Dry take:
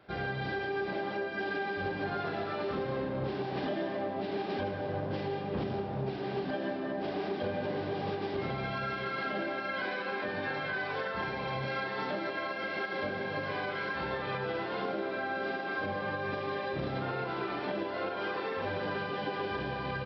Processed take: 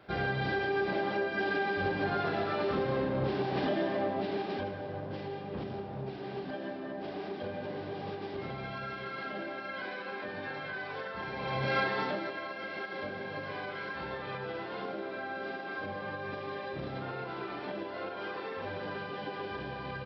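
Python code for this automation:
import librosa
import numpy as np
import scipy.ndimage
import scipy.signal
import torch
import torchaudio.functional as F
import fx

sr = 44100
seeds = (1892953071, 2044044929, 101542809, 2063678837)

y = fx.gain(x, sr, db=fx.line((4.09, 3.0), (4.89, -4.5), (11.23, -4.5), (11.79, 6.0), (12.4, -4.0)))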